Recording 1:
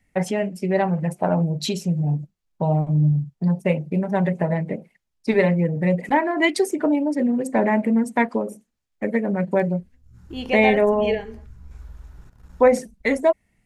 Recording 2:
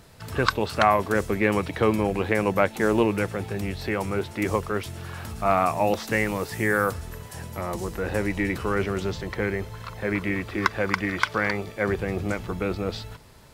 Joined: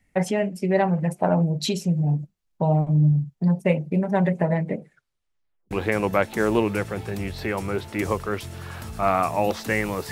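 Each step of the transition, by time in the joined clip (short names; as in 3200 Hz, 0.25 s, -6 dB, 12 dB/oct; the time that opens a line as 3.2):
recording 1
4.77 tape stop 0.94 s
5.71 switch to recording 2 from 2.14 s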